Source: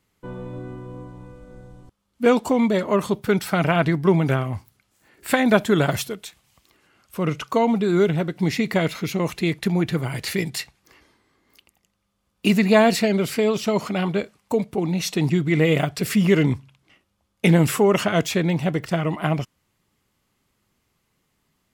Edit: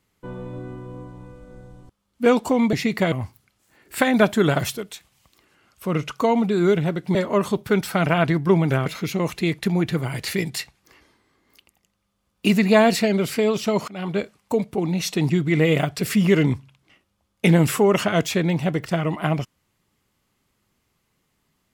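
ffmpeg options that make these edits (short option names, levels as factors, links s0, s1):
-filter_complex "[0:a]asplit=6[s0][s1][s2][s3][s4][s5];[s0]atrim=end=2.732[s6];[s1]atrim=start=8.468:end=8.862[s7];[s2]atrim=start=4.438:end=8.472[s8];[s3]atrim=start=2.728:end=4.442[s9];[s4]atrim=start=8.858:end=13.88,asetpts=PTS-STARTPTS,afade=t=out:st=5.018:d=0.004:c=hsin:silence=0.0891251[s10];[s5]atrim=start=13.88,asetpts=PTS-STARTPTS,afade=t=in:d=0.31:silence=0.0891251[s11];[s6][s7]acrossfade=d=0.004:c1=hsin:c2=hsin[s12];[s12][s8]acrossfade=d=0.004:c1=hsin:c2=hsin[s13];[s13][s9]acrossfade=d=0.004:c1=hsin:c2=hsin[s14];[s10][s11]concat=n=2:v=0:a=1[s15];[s14][s15]acrossfade=d=0.004:c1=hsin:c2=hsin"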